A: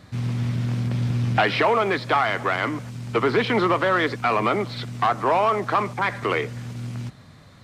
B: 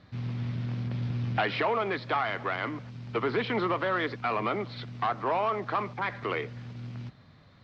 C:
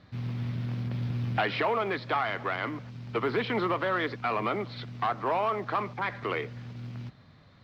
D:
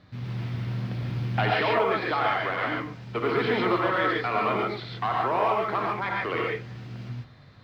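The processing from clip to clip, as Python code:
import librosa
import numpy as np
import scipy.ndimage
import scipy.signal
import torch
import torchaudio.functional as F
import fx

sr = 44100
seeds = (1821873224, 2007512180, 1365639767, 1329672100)

y1 = scipy.signal.sosfilt(scipy.signal.butter(4, 4900.0, 'lowpass', fs=sr, output='sos'), x)
y1 = y1 * 10.0 ** (-8.0 / 20.0)
y2 = fx.quant_float(y1, sr, bits=6)
y3 = fx.rev_gated(y2, sr, seeds[0], gate_ms=170, shape='rising', drr_db=-2.5)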